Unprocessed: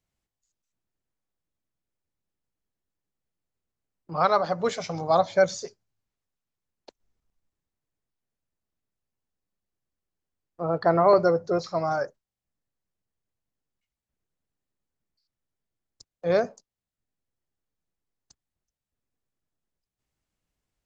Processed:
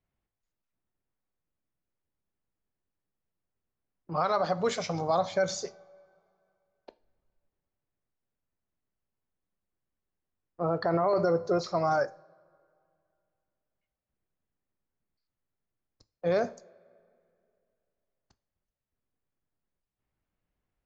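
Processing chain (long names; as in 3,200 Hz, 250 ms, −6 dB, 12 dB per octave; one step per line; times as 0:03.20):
coupled-rooms reverb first 0.35 s, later 2.5 s, from −22 dB, DRR 14.5 dB
brickwall limiter −17.5 dBFS, peak gain reduction 11 dB
low-pass that shuts in the quiet parts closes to 2,300 Hz, open at −25 dBFS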